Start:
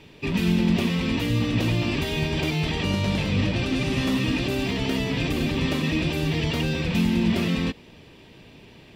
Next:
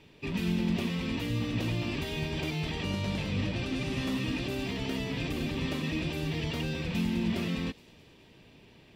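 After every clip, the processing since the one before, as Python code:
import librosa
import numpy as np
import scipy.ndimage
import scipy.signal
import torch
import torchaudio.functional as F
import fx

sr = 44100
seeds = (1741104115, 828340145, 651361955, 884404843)

y = fx.echo_wet_highpass(x, sr, ms=212, feedback_pct=57, hz=4500.0, wet_db=-15.0)
y = y * librosa.db_to_amplitude(-8.0)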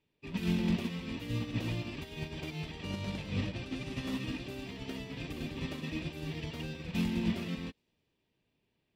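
y = fx.upward_expand(x, sr, threshold_db=-43.0, expansion=2.5)
y = y * librosa.db_to_amplitude(2.0)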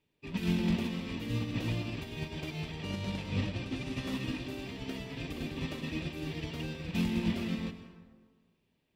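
y = fx.rev_plate(x, sr, seeds[0], rt60_s=1.5, hf_ratio=0.5, predelay_ms=105, drr_db=9.5)
y = y * librosa.db_to_amplitude(1.0)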